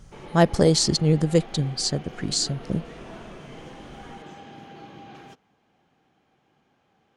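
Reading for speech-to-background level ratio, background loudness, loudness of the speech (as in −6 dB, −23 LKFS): 20.0 dB, −42.5 LKFS, −22.5 LKFS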